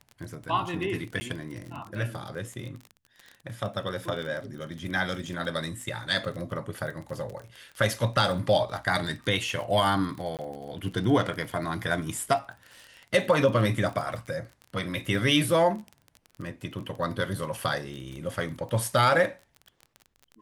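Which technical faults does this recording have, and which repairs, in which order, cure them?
surface crackle 27 per second −34 dBFS
0:01.20–0:01.21: drop-out 10 ms
0:10.37–0:10.39: drop-out 18 ms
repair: click removal
repair the gap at 0:01.20, 10 ms
repair the gap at 0:10.37, 18 ms

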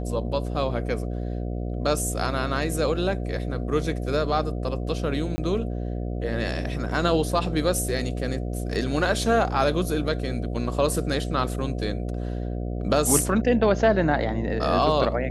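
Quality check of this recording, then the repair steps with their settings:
mains buzz 60 Hz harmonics 12 −29 dBFS
0:05.36–0:05.38: drop-out 20 ms
0:08.74: drop-out 4 ms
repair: hum removal 60 Hz, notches 12
repair the gap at 0:05.36, 20 ms
repair the gap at 0:08.74, 4 ms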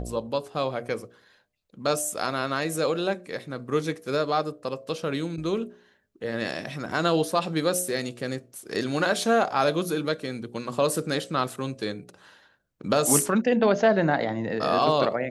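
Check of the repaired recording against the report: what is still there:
none of them is left

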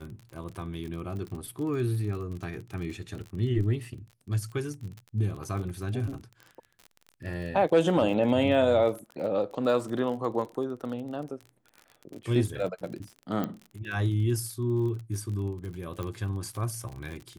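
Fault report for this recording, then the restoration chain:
surface crackle 36 per second −36 dBFS
0:13.44: click −18 dBFS
0:16.03: click −22 dBFS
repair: click removal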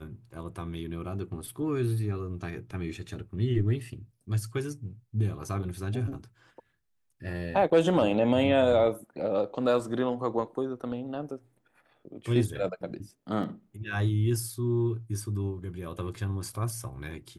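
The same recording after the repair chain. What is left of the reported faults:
0:13.44: click

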